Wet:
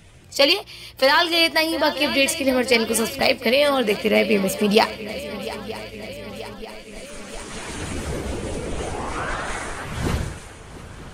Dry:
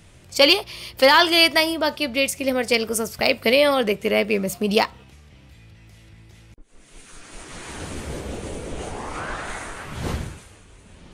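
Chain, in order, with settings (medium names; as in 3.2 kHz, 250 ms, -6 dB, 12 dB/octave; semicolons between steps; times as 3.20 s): coarse spectral quantiser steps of 15 dB; shuffle delay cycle 934 ms, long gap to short 3:1, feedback 61%, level -17.5 dB; gain riding within 3 dB 0.5 s; trim +1 dB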